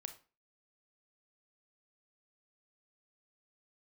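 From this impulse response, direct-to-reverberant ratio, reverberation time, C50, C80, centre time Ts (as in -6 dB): 7.5 dB, 0.35 s, 12.0 dB, 18.0 dB, 9 ms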